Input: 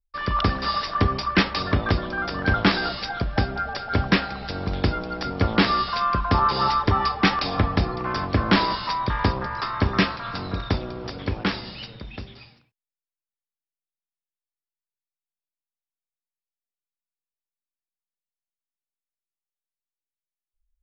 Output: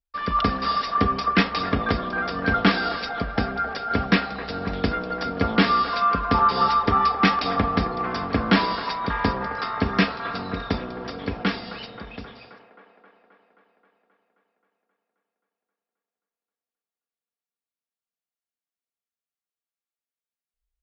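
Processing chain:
high-pass filter 95 Hz 6 dB per octave
high-shelf EQ 4,700 Hz −6 dB
notch filter 950 Hz, Q 16
comb filter 4.3 ms, depth 46%
on a send: delay with a band-pass on its return 265 ms, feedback 69%, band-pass 840 Hz, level −10 dB

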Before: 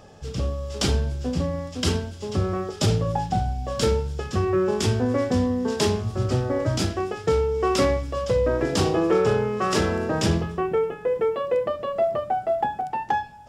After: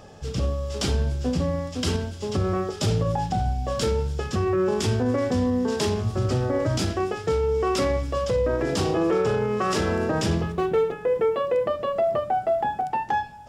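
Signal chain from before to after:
0:10.52–0:10.92: running median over 25 samples
brickwall limiter −17.5 dBFS, peak gain reduction 6 dB
level +2 dB

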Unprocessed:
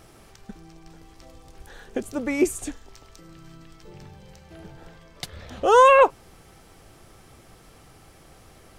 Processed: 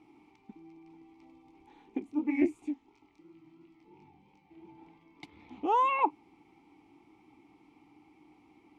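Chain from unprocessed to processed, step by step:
formant filter u
0:01.99–0:04.69: chorus effect 2.9 Hz, delay 19 ms, depth 7.9 ms
highs frequency-modulated by the lows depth 0.1 ms
level +4 dB

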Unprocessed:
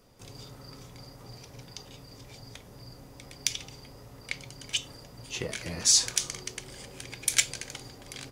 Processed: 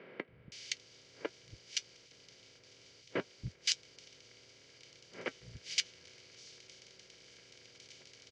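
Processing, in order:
compressor on every frequency bin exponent 0.2
low-pass filter 5,300 Hz 24 dB per octave
noise gate with hold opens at −16 dBFS
high-pass filter 61 Hz 12 dB per octave
high-shelf EQ 3,300 Hz −3 dB
gate with flip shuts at −18 dBFS, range −35 dB
flanger 0.58 Hz, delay 5 ms, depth 3.4 ms, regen −62%
three-band delay without the direct sound mids, lows, highs 280/520 ms, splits 170/2,000 Hz
level +7.5 dB

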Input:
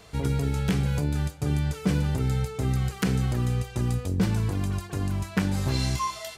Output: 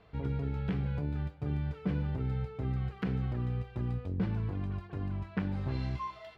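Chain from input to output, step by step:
high-frequency loss of the air 380 metres
level −7.5 dB

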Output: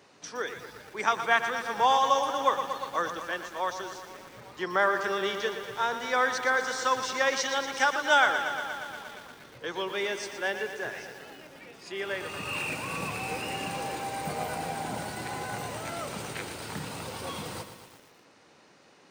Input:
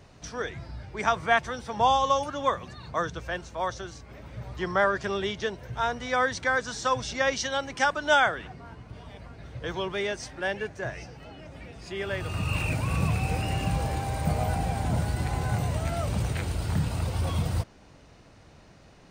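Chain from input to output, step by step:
high-pass filter 310 Hz 12 dB per octave
parametric band 660 Hz −7 dB 0.24 octaves
feedback echo at a low word length 118 ms, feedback 80%, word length 8 bits, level −9.5 dB

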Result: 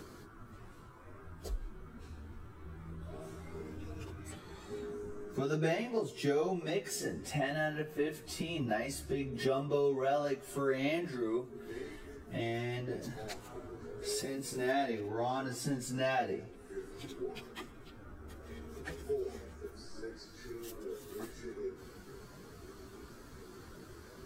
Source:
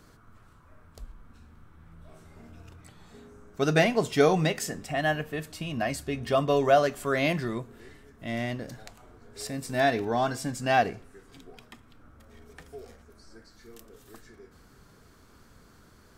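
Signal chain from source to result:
parametric band 370 Hz +10.5 dB 0.48 octaves
downward compressor 3 to 1, threshold −38 dBFS, peak gain reduction 19.5 dB
time stretch by phase vocoder 1.5×
level +5.5 dB

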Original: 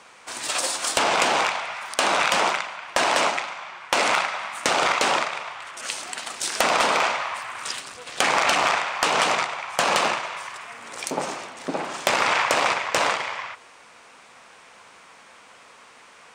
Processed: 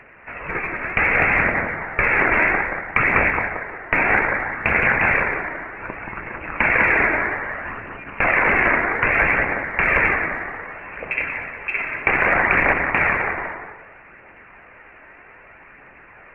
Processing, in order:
feedback echo with a high-pass in the loop 178 ms, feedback 36%, high-pass 790 Hz, level −4.5 dB
voice inversion scrambler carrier 2,900 Hz
phase shifter 0.63 Hz, delay 3.3 ms, feedback 28%
level +3 dB

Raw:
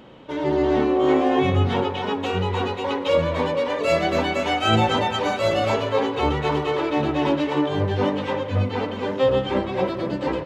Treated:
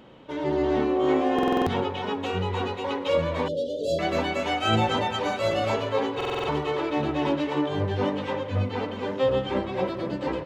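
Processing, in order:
0:03.48–0:03.99: Chebyshev band-stop filter 630–3,200 Hz, order 5
buffer that repeats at 0:01.34/0:06.16, samples 2,048, times 6
level −4 dB

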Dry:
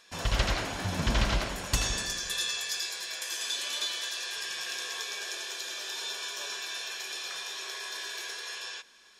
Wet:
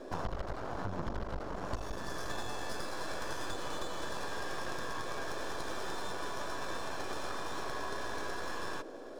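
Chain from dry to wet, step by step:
low-pass filter 6,000 Hz 24 dB per octave
half-wave rectification
high shelf with overshoot 1,700 Hz −12 dB, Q 1.5
downward compressor 16 to 1, threshold −45 dBFS, peak gain reduction 23 dB
noise in a band 260–670 Hz −60 dBFS
level +12.5 dB

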